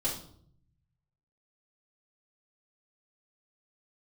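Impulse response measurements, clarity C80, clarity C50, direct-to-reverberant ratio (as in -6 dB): 11.0 dB, 6.0 dB, -8.5 dB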